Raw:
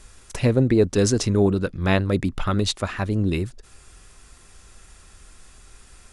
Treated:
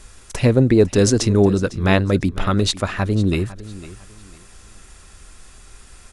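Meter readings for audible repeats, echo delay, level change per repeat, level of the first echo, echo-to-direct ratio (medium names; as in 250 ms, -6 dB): 2, 503 ms, -11.0 dB, -17.5 dB, -17.0 dB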